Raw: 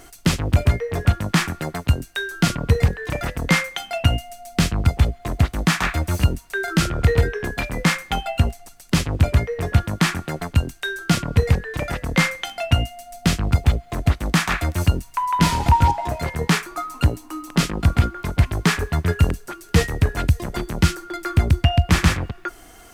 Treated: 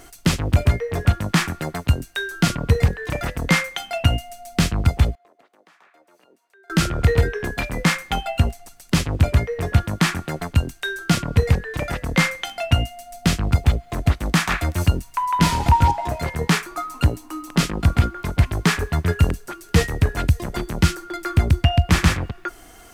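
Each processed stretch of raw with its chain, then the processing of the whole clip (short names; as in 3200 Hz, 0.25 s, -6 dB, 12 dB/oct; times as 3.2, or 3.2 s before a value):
5.15–6.7 HPF 450 Hz 24 dB/oct + compressor 2.5:1, threshold -45 dBFS + EQ curve 180 Hz 0 dB, 510 Hz -10 dB, 9100 Hz -23 dB
whole clip: dry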